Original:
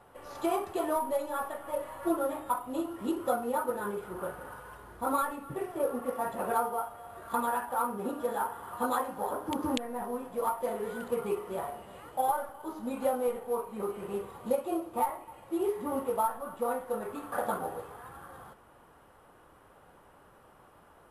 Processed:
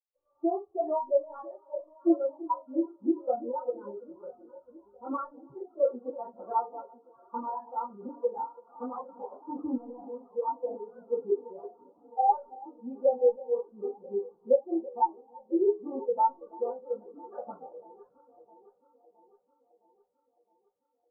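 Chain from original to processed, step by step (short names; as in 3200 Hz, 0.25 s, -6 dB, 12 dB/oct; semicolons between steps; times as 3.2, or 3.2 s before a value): treble ducked by the level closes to 1700 Hz, closed at -26.5 dBFS; air absorption 280 m; echo with dull and thin repeats by turns 0.332 s, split 970 Hz, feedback 89%, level -8 dB; spectral expander 2.5:1; gain +5 dB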